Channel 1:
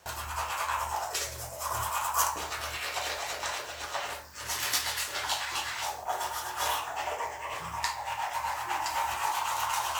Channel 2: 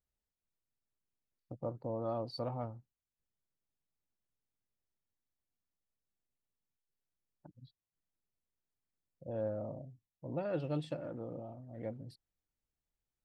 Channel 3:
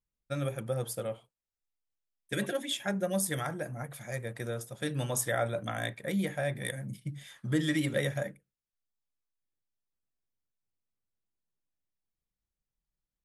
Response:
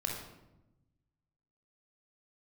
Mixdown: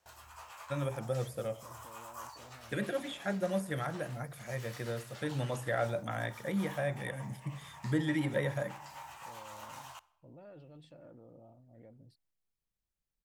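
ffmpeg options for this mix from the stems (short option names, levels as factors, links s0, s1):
-filter_complex "[0:a]volume=0.126,asplit=2[s0][s1];[s1]volume=0.106[s2];[1:a]alimiter=level_in=3.98:limit=0.0631:level=0:latency=1,volume=0.251,volume=0.316[s3];[2:a]adelay=400,volume=0.75,asplit=2[s4][s5];[s5]volume=0.0944[s6];[3:a]atrim=start_sample=2205[s7];[s2][s6]amix=inputs=2:normalize=0[s8];[s8][s7]afir=irnorm=-1:irlink=0[s9];[s0][s3][s4][s9]amix=inputs=4:normalize=0,acrossover=split=2500[s10][s11];[s11]acompressor=threshold=0.00355:ratio=4:attack=1:release=60[s12];[s10][s12]amix=inputs=2:normalize=0"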